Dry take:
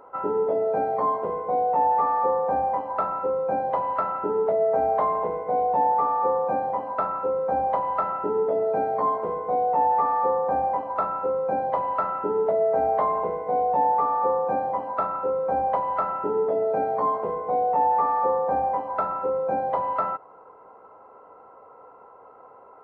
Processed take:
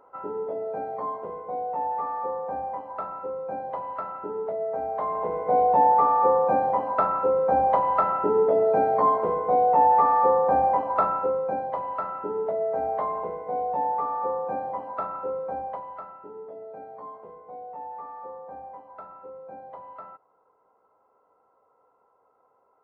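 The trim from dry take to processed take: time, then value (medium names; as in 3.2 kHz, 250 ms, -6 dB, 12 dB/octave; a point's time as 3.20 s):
4.93 s -7.5 dB
5.52 s +3 dB
11.08 s +3 dB
11.69 s -5 dB
15.35 s -5 dB
16.20 s -17 dB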